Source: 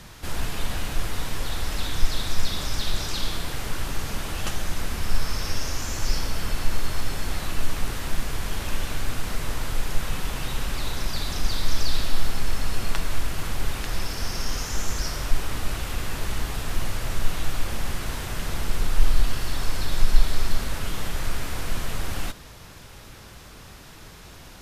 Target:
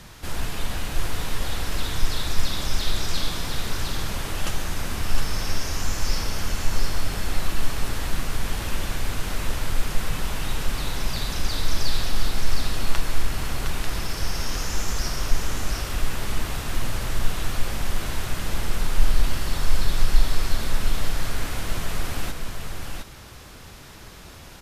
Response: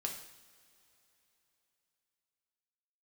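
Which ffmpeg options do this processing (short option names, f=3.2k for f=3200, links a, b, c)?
-af "aecho=1:1:711:0.596"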